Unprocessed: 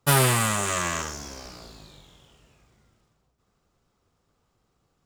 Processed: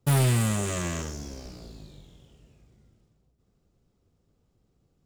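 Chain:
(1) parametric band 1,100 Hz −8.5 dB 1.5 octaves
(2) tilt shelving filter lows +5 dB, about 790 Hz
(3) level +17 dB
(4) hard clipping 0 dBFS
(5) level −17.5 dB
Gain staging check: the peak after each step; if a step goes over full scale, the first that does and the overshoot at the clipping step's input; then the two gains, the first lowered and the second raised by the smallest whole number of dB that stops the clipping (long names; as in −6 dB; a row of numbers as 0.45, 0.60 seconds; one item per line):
−6.0, −7.0, +10.0, 0.0, −17.5 dBFS
step 3, 10.0 dB
step 3 +7 dB, step 5 −7.5 dB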